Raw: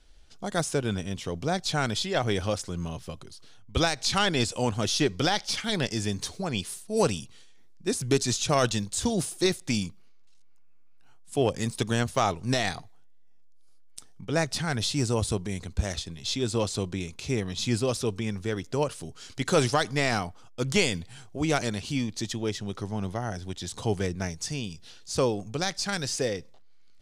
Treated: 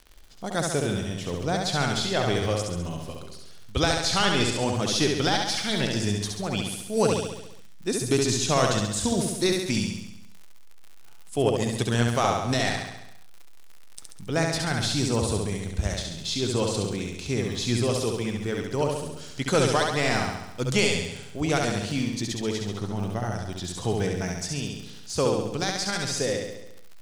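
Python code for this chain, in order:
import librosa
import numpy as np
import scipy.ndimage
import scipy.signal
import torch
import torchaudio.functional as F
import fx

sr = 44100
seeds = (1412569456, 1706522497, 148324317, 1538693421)

p1 = fx.dmg_crackle(x, sr, seeds[0], per_s=50.0, level_db=-37.0)
y = p1 + fx.echo_feedback(p1, sr, ms=68, feedback_pct=59, wet_db=-3.5, dry=0)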